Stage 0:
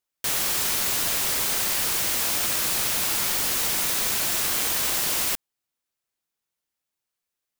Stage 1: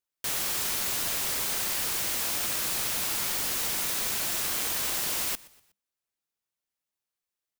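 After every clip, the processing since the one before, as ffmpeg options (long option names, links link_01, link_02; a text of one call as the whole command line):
ffmpeg -i in.wav -filter_complex "[0:a]asplit=4[link_01][link_02][link_03][link_04];[link_02]adelay=122,afreqshift=-69,volume=-22dB[link_05];[link_03]adelay=244,afreqshift=-138,volume=-29.5dB[link_06];[link_04]adelay=366,afreqshift=-207,volume=-37.1dB[link_07];[link_01][link_05][link_06][link_07]amix=inputs=4:normalize=0,volume=-5dB" out.wav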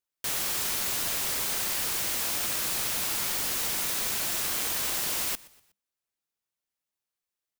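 ffmpeg -i in.wav -af anull out.wav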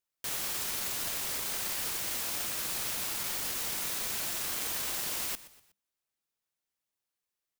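ffmpeg -i in.wav -af "alimiter=level_in=1dB:limit=-24dB:level=0:latency=1:release=13,volume=-1dB" out.wav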